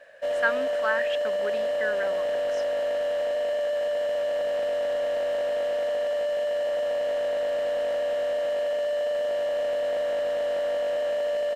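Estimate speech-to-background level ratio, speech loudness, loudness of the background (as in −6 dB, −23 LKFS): −4.0 dB, −31.0 LKFS, −27.0 LKFS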